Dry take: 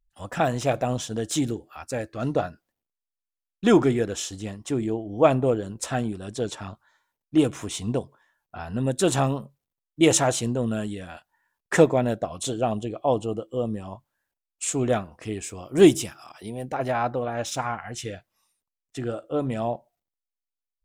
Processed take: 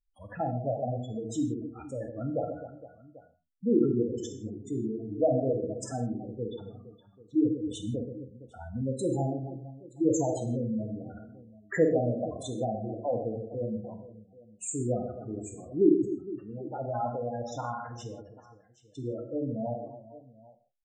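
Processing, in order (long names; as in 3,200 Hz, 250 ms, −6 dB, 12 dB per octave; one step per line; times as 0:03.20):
reverse bouncing-ball delay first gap 50 ms, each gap 1.6×, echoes 5
gate on every frequency bin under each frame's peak −10 dB strong
reverb whose tail is shaped and stops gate 190 ms falling, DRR 5.5 dB
level −8 dB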